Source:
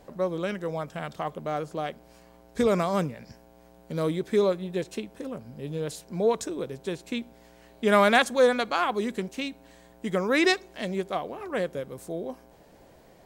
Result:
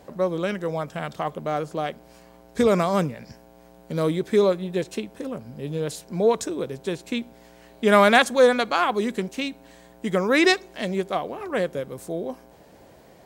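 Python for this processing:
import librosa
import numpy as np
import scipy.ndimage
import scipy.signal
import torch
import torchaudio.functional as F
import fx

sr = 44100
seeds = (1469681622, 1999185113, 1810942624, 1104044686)

y = scipy.signal.sosfilt(scipy.signal.butter(2, 54.0, 'highpass', fs=sr, output='sos'), x)
y = y * 10.0 ** (4.0 / 20.0)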